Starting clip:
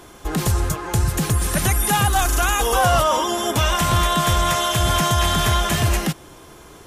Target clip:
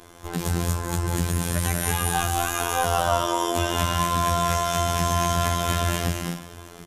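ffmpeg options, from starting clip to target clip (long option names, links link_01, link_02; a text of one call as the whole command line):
ffmpeg -i in.wav -af "acompressor=threshold=-25dB:ratio=1.5,aecho=1:1:147|186|216|259|317|724:0.398|0.531|0.596|0.398|0.178|0.119,afftfilt=real='hypot(re,im)*cos(PI*b)':imag='0':win_size=2048:overlap=0.75,volume=-1dB" out.wav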